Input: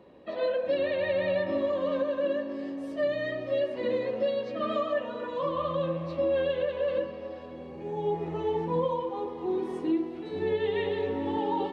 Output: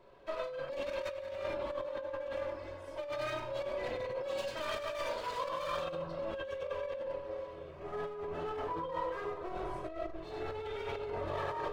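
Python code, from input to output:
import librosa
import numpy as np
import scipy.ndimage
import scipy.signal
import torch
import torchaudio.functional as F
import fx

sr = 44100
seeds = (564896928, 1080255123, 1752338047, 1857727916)

y = fx.lower_of_two(x, sr, delay_ms=1.9)
y = fx.high_shelf(y, sr, hz=2900.0, db=fx.steps((0.0, -3.5), (4.37, 9.0), (5.94, -5.5)))
y = y + 10.0 ** (-4.5 / 20.0) * np.pad(y, (int(98 * sr / 1000.0), 0))[:len(y)]
y = fx.dereverb_blind(y, sr, rt60_s=0.74)
y = fx.room_shoebox(y, sr, seeds[0], volume_m3=1000.0, walls='furnished', distance_m=2.9)
y = fx.over_compress(y, sr, threshold_db=-29.0, ratio=-1.0)
y = fx.low_shelf(y, sr, hz=390.0, db=-9.0)
y = y * 10.0 ** (-5.5 / 20.0)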